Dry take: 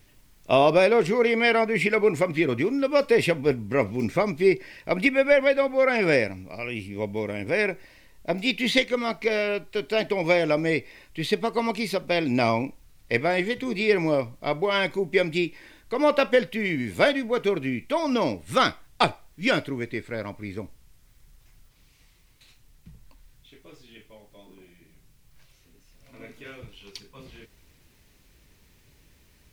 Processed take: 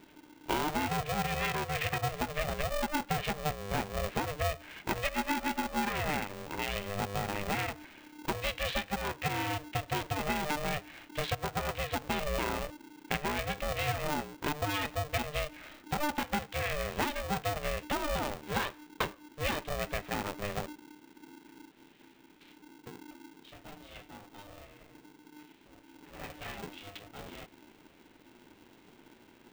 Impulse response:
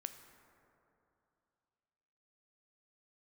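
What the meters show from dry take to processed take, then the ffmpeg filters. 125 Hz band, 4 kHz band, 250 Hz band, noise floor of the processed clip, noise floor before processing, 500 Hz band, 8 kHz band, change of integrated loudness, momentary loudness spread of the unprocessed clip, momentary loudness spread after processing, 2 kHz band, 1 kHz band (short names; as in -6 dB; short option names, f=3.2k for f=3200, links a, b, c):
-4.0 dB, -7.0 dB, -11.5 dB, -60 dBFS, -59 dBFS, -15.0 dB, +2.0 dB, -10.5 dB, 13 LU, 17 LU, -9.0 dB, -4.5 dB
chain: -af "acompressor=threshold=-30dB:ratio=6,aresample=8000,aresample=44100,aeval=exprs='val(0)*sgn(sin(2*PI*300*n/s))':c=same"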